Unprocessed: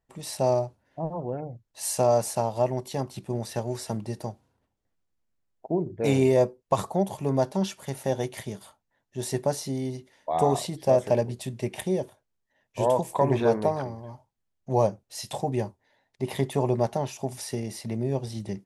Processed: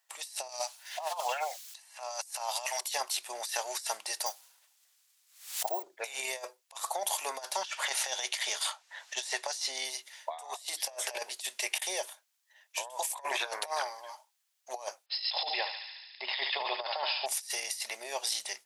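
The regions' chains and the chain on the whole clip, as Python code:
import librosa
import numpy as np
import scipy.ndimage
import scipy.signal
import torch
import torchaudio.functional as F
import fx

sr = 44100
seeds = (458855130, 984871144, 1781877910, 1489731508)

y = fx.chain(x, sr, fx.highpass(hz=620.0, slope=24),
    fx.band_squash(depth_pct=100), at=(0.49, 2.81))
y = fx.chain(y, sr, fx.high_shelf(hz=4300.0, db=11.5),
    fx.resample_bad(factor=2, down='none', up='hold'),
    fx.pre_swell(db_per_s=110.0), at=(4.26, 5.83))
y = fx.chain(y, sr, fx.lowpass(hz=6500.0, slope=12),
    fx.band_squash(depth_pct=100), at=(7.64, 9.85))
y = fx.chain(y, sr, fx.brickwall_lowpass(high_hz=5300.0),
    fx.hum_notches(base_hz=50, count=7),
    fx.echo_thinned(ms=72, feedback_pct=80, hz=1100.0, wet_db=-6.5), at=(15.06, 17.26))
y = scipy.signal.sosfilt(scipy.signal.butter(4, 660.0, 'highpass', fs=sr, output='sos'), y)
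y = fx.tilt_shelf(y, sr, db=-9.5, hz=1300.0)
y = fx.over_compress(y, sr, threshold_db=-37.0, ratio=-0.5)
y = y * 10.0 ** (2.5 / 20.0)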